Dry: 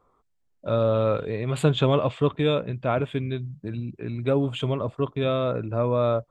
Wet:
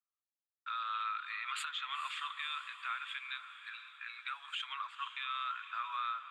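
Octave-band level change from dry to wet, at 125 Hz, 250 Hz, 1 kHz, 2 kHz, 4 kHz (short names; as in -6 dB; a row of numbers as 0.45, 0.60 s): under -40 dB, under -40 dB, -6.0 dB, -2.0 dB, -5.5 dB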